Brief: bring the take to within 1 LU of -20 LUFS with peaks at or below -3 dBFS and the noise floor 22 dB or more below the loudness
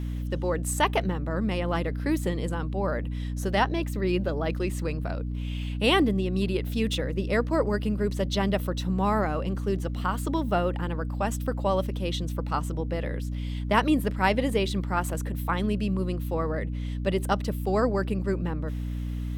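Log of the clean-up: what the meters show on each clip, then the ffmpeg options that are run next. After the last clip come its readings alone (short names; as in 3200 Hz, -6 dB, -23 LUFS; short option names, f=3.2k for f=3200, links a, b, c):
hum 60 Hz; harmonics up to 300 Hz; hum level -28 dBFS; loudness -27.5 LUFS; peak -9.0 dBFS; loudness target -20.0 LUFS
-> -af "bandreject=f=60:t=h:w=4,bandreject=f=120:t=h:w=4,bandreject=f=180:t=h:w=4,bandreject=f=240:t=h:w=4,bandreject=f=300:t=h:w=4"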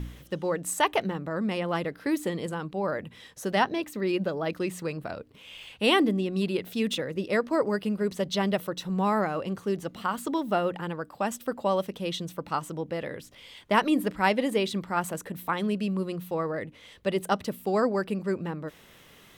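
hum none; loudness -29.0 LUFS; peak -9.0 dBFS; loudness target -20.0 LUFS
-> -af "volume=9dB,alimiter=limit=-3dB:level=0:latency=1"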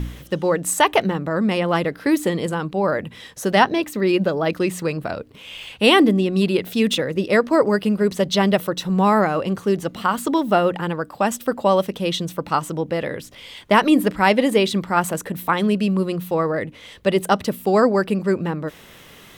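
loudness -20.0 LUFS; peak -3.0 dBFS; noise floor -45 dBFS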